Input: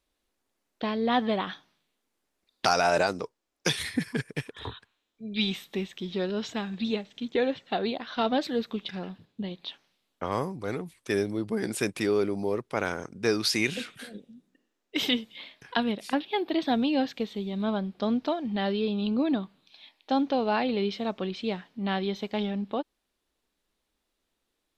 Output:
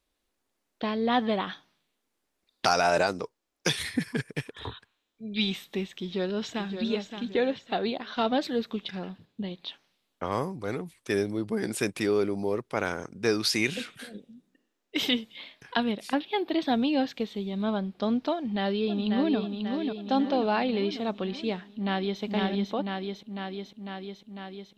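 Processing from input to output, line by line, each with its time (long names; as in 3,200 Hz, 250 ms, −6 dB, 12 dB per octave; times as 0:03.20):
0:05.84–0:06.78: delay throw 570 ms, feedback 35%, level −8 dB
0:18.35–0:19.38: delay throw 540 ms, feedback 60%, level −5 dB
0:21.73–0:22.22: delay throw 500 ms, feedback 75%, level −2 dB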